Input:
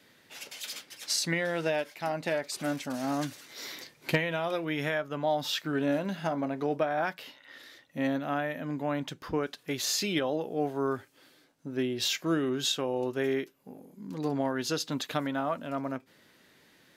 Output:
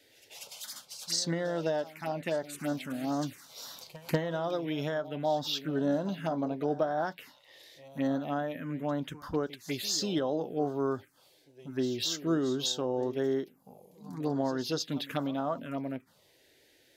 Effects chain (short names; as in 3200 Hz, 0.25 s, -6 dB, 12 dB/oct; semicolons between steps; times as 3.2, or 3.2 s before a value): pre-echo 0.191 s -16 dB; envelope phaser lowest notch 180 Hz, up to 2400 Hz, full sweep at -26.5 dBFS